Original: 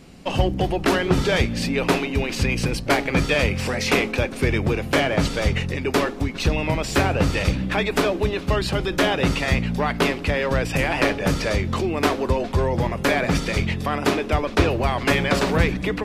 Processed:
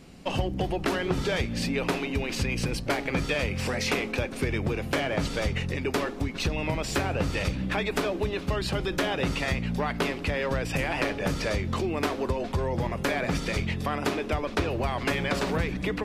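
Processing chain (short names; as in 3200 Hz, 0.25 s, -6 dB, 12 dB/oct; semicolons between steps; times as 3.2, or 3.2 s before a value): compressor 4:1, threshold -20 dBFS, peak gain reduction 7.5 dB; gain -3.5 dB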